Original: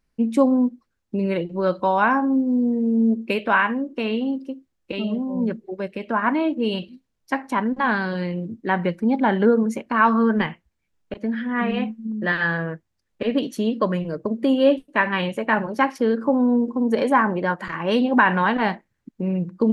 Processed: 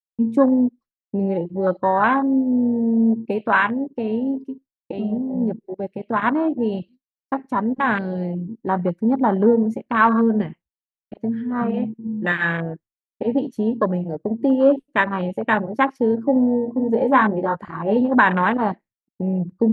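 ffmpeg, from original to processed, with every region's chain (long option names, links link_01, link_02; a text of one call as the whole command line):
ffmpeg -i in.wav -filter_complex "[0:a]asettb=1/sr,asplit=3[link_01][link_02][link_03];[link_01]atrim=end=16.344[link_04];[link_02]atrim=start=16.34:end=17.97,asetpts=PTS-STARTPTS,afade=type=in:duration=0.004:curve=qsin,afade=type=out:start_time=1.626:duration=0.004:curve=qsin,acrossover=split=3500[link_05][link_06];[link_06]acompressor=threshold=-52dB:ratio=4:attack=1:release=60[link_07];[link_05][link_07]amix=inputs=2:normalize=0,asplit=2[link_08][link_09];[link_09]adelay=19,volume=-5.5dB[link_10];[link_08][link_10]amix=inputs=2:normalize=0,atrim=end_sample=71883[link_11];[link_03]atrim=start=17.966[link_12];[link_04][link_11]acrossfade=duration=0.004:curve1=hsin:curve2=qsin[link_13];[link_13][link_12]acrossfade=duration=0.004:curve1=qsin:curve2=hsin,afwtdn=0.0794,agate=range=-33dB:threshold=-42dB:ratio=3:detection=peak,volume=1.5dB" out.wav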